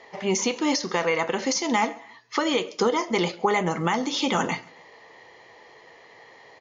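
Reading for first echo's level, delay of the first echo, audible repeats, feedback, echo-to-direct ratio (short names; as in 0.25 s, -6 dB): -24.0 dB, 0.136 s, 2, 39%, -23.5 dB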